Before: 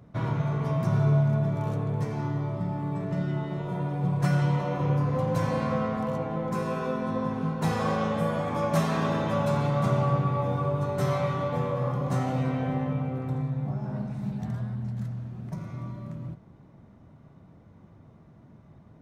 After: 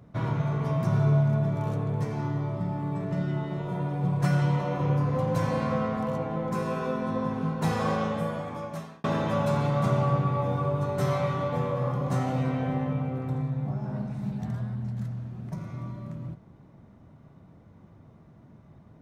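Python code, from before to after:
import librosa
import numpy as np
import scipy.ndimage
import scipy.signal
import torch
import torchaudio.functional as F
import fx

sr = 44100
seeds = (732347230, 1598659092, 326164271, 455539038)

y = fx.edit(x, sr, fx.fade_out_span(start_s=7.93, length_s=1.11), tone=tone)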